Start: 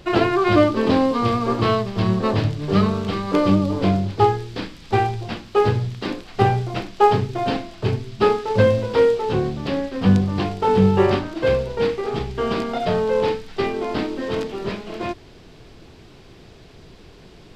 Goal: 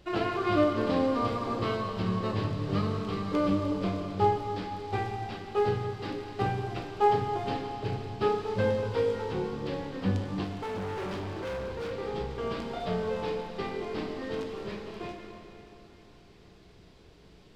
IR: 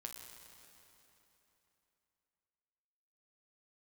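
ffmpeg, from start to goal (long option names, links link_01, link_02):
-filter_complex "[1:a]atrim=start_sample=2205[link_01];[0:a][link_01]afir=irnorm=-1:irlink=0,asettb=1/sr,asplit=3[link_02][link_03][link_04];[link_02]atrim=end=10.444[link_05];[link_03]atrim=start=10.44:end=11.92,asetpts=PTS-STARTPTS,afade=type=in:duration=0.004:curve=qsin,afade=type=out:start_time=1.476:duration=0.004:curve=qsin,asoftclip=type=hard:threshold=-26dB[link_06];[link_04]atrim=start=11.916[link_07];[link_05][link_06]acrossfade=duration=0.004:curve1=hsin:curve2=qsin[link_08];[link_08][link_07]acrossfade=duration=0.004:curve1=qsin:curve2=hsin,volume=-6.5dB"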